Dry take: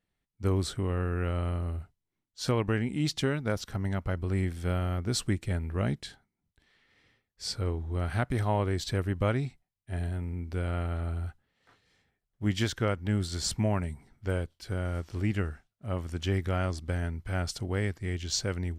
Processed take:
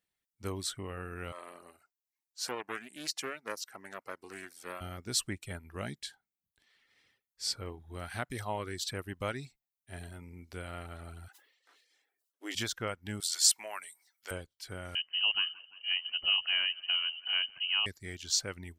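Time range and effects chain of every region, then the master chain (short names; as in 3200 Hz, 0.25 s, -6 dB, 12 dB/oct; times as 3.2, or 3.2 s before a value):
1.32–4.81 HPF 400 Hz + bell 3400 Hz -9 dB 0.31 oct + Doppler distortion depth 0.33 ms
11.28–12.55 brick-wall FIR high-pass 260 Hz + sustainer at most 59 dB/s
13.2–14.31 HPF 600 Hz + tilt +2.5 dB/oct
14.95–17.86 feedback echo 0.17 s, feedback 48%, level -15 dB + inverted band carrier 3000 Hz
whole clip: reverb removal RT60 0.55 s; tilt +2.5 dB/oct; gain -4.5 dB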